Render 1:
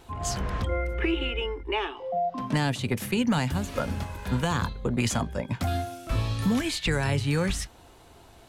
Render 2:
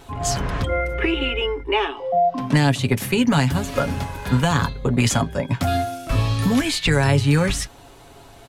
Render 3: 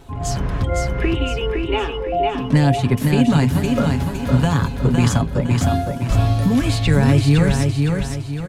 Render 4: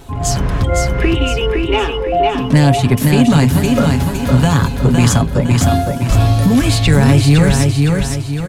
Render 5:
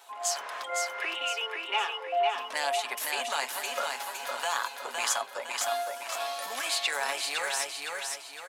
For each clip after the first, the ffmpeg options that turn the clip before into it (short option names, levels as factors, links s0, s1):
-af "aecho=1:1:7.2:0.43,volume=2.11"
-filter_complex "[0:a]lowshelf=f=440:g=8.5,asplit=2[s0][s1];[s1]aecho=0:1:511|1022|1533|2044|2555:0.631|0.259|0.106|0.0435|0.0178[s2];[s0][s2]amix=inputs=2:normalize=0,volume=0.596"
-af "acontrast=50,highshelf=f=5300:g=6"
-af "highpass=f=700:w=0.5412,highpass=f=700:w=1.3066,volume=0.355"